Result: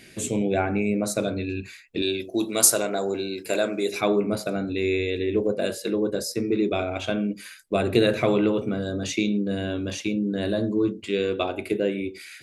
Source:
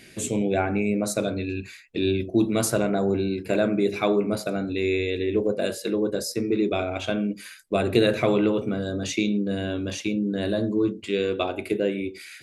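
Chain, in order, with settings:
0:02.02–0:04.01: bass and treble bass −14 dB, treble +12 dB

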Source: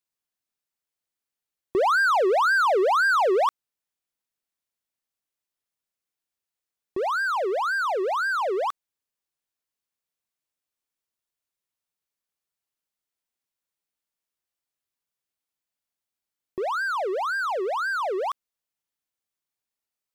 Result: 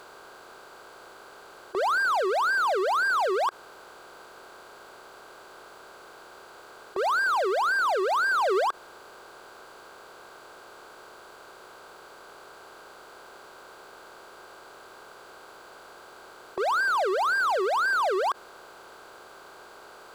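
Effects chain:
compressor on every frequency bin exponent 0.4
0:08.10–0:08.64: high-pass filter 83 Hz → 180 Hz 24 dB per octave
brickwall limiter −15.5 dBFS, peak gain reduction 10.5 dB
level −2.5 dB

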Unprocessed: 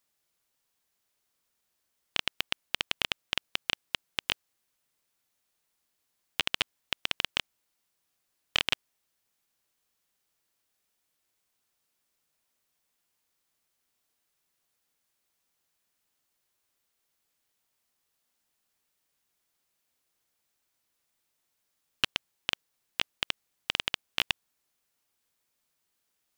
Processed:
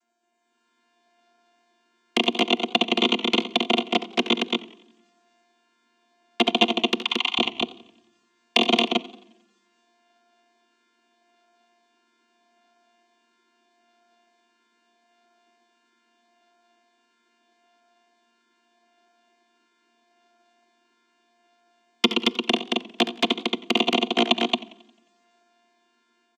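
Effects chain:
channel vocoder with a chord as carrier bare fifth, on A#3
automatic gain control gain up to 9 dB
flanger swept by the level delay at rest 3 ms, full sweep at −26.5 dBFS
0:06.99–0:07.39: Chebyshev high-pass with heavy ripple 750 Hz, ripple 3 dB
loudspeakers that aren't time-aligned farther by 24 metres −12 dB, 77 metres −3 dB
on a send at −22 dB: convolution reverb RT60 0.90 s, pre-delay 3 ms
on the sum: feedback echo with a swinging delay time 89 ms, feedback 47%, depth 90 cents, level −20 dB
level +4 dB

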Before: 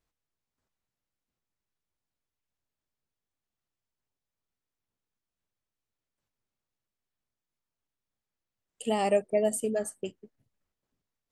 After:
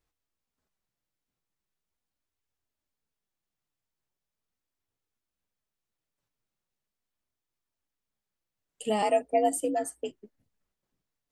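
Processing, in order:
0:09.02–0:10.11: frequency shifter +58 Hz
flanger 0.4 Hz, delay 2.2 ms, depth 4.9 ms, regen −53%
level +4.5 dB

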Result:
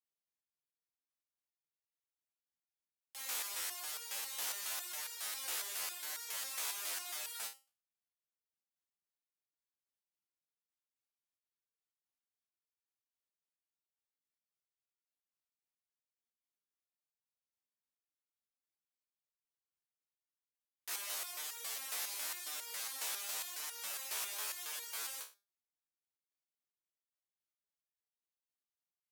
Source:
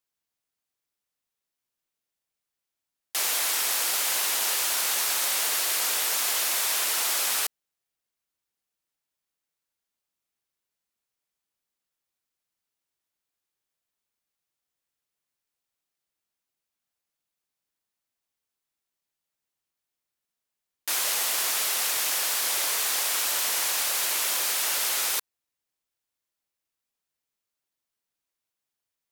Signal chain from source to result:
frequency shifter +46 Hz
step-sequenced resonator 7.3 Hz 65–470 Hz
level −5 dB

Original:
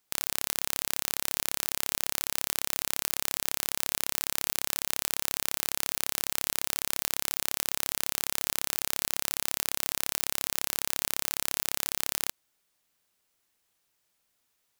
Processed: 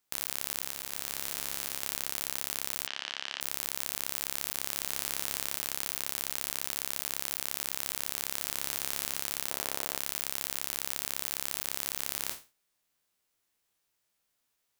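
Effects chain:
peak hold with a decay on every bin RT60 0.31 s
0:00.64–0:01.83: transient designer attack −4 dB, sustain +2 dB
0:09.50–0:09.98: parametric band 570 Hz +8.5 dB 2.3 octaves
floating-point word with a short mantissa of 2 bits
0:02.87–0:03.41: loudspeaker in its box 300–5,100 Hz, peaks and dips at 330 Hz −7 dB, 480 Hz −7 dB, 1,700 Hz +5 dB, 3,000 Hz +9 dB
level −5 dB

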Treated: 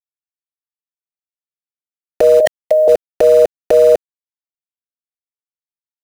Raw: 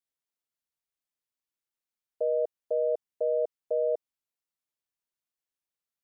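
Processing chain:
0:02.40–0:02.88: drawn EQ curve 170 Hz 0 dB, 260 Hz −30 dB, 410 Hz −20 dB, 620 Hz +10 dB, 890 Hz −16 dB, 1,400 Hz −28 dB, 2,200 Hz +5 dB, 3,200 Hz −3 dB
harmonic and percussive parts rebalanced harmonic −6 dB
centre clipping without the shift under −44.5 dBFS
compressor whose output falls as the input rises −41 dBFS, ratio −1
low-shelf EQ 440 Hz +6 dB
boost into a limiter +34.5 dB
level −1 dB

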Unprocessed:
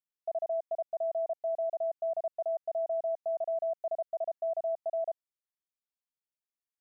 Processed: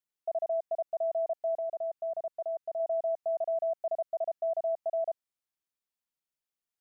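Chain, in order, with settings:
0:01.55–0:02.80: dynamic equaliser 720 Hz, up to −4 dB, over −46 dBFS, Q 2.1
level +1.5 dB

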